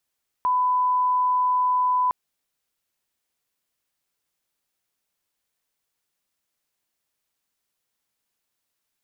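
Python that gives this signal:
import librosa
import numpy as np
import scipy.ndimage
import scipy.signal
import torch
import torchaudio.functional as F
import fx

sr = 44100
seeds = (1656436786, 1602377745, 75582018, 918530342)

y = fx.lineup_tone(sr, length_s=1.66, level_db=-18.0)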